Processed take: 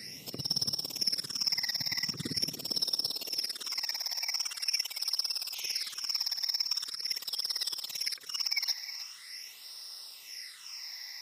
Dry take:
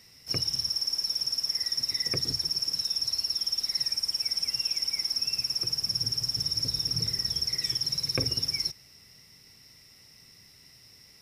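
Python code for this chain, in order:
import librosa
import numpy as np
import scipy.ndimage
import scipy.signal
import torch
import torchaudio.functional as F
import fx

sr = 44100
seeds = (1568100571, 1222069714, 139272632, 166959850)

p1 = fx.over_compress(x, sr, threshold_db=-36.0, ratio=-0.5)
p2 = fx.filter_sweep_highpass(p1, sr, from_hz=190.0, to_hz=1100.0, start_s=2.27, end_s=5.03, q=1.1)
p3 = fx.spec_paint(p2, sr, seeds[0], shape='noise', start_s=5.54, length_s=0.39, low_hz=2000.0, high_hz=6600.0, level_db=-46.0)
p4 = fx.phaser_stages(p3, sr, stages=8, low_hz=390.0, high_hz=2300.0, hz=0.43, feedback_pct=20)
p5 = p4 + fx.echo_single(p4, sr, ms=315, db=-13.0, dry=0)
y = p5 * 10.0 ** (5.5 / 20.0)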